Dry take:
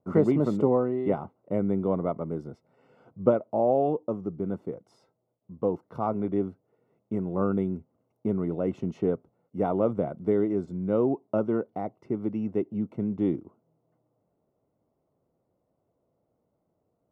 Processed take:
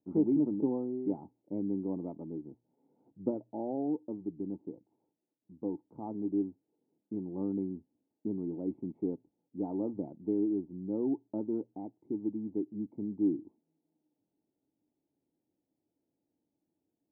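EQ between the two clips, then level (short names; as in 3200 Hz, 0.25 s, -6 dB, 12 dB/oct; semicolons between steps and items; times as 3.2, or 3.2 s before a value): vocal tract filter u; high shelf 2600 Hz +12 dB; notches 60/120 Hz; 0.0 dB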